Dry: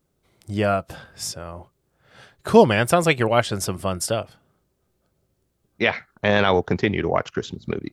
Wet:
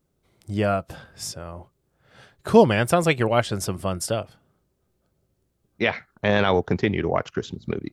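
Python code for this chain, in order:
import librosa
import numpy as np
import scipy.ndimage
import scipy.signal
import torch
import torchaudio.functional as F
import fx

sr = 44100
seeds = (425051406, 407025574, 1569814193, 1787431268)

y = fx.low_shelf(x, sr, hz=490.0, db=3.0)
y = y * librosa.db_to_amplitude(-3.0)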